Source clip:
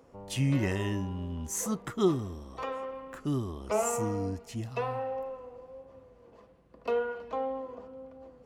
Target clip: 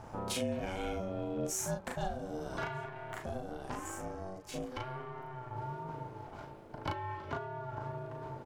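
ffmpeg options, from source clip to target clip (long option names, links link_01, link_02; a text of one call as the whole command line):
ffmpeg -i in.wav -filter_complex "[0:a]aeval=exprs='if(lt(val(0),0),0.708*val(0),val(0))':channel_layout=same,acompressor=threshold=-45dB:ratio=12,aeval=exprs='val(0)*sin(2*PI*380*n/s)':channel_layout=same,asettb=1/sr,asplit=3[link_01][link_02][link_03];[link_01]atrim=end=2.854[link_04];[link_02]atrim=start=2.85:end=5.57,asetpts=PTS-STARTPTS,afade=type=in:duration=0.004:curve=qsin,afade=type=out:start_time=2.716:duration=0.004:curve=qsin,aeval=exprs='(tanh(89.1*val(0)+0.7)-tanh(0.7))/89.1':channel_layout=same[link_05];[link_03]atrim=start=5.566[link_06];[link_04][link_05]acrossfade=duration=0.004:curve1=hsin:curve2=qsin[link_07];[link_07][link_06]acrossfade=duration=0.004:curve1=qsin:curve2=hsin,asplit=2[link_08][link_09];[link_09]adelay=37,volume=-3dB[link_10];[link_08][link_10]amix=inputs=2:normalize=0,volume=12.5dB" out.wav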